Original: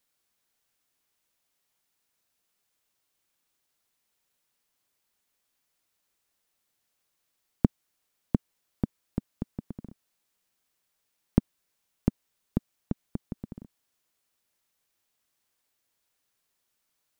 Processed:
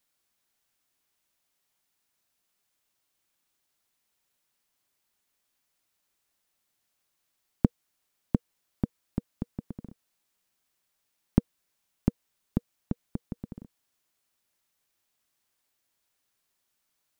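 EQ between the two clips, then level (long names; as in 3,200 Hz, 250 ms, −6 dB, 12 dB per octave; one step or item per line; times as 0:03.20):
notch filter 480 Hz, Q 13
0.0 dB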